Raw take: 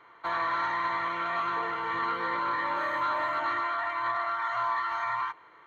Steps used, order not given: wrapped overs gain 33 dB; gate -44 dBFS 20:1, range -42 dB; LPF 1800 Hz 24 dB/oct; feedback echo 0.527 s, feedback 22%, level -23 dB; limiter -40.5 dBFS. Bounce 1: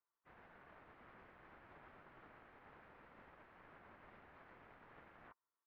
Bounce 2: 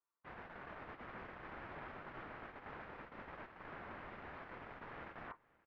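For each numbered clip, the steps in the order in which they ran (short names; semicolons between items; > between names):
wrapped overs > limiter > feedback echo > gate > LPF; wrapped overs > LPF > gate > limiter > feedback echo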